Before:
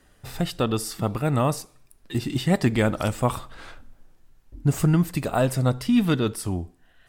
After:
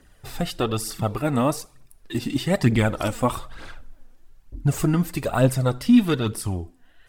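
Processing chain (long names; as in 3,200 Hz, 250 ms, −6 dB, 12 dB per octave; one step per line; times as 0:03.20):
phase shifter 1.1 Hz, delay 4.4 ms, feedback 50%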